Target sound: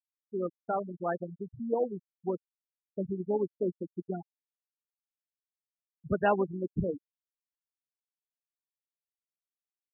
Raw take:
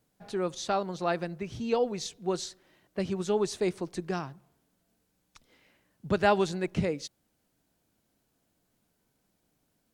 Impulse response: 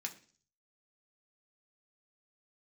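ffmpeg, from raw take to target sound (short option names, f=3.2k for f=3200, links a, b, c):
-af "tremolo=f=140:d=0.462,afftfilt=real='re*gte(hypot(re,im),0.0794)':imag='im*gte(hypot(re,im),0.0794)':win_size=1024:overlap=0.75"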